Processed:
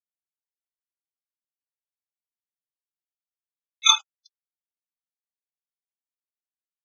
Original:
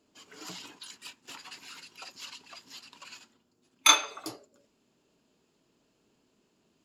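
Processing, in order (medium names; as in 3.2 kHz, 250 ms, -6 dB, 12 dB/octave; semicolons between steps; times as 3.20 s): graphic EQ 125/250/1000/4000 Hz +8/-11/+4/+8 dB; small samples zeroed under -23 dBFS; loudest bins only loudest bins 32; upward compressor, threshold -26 dBFS; trim -1 dB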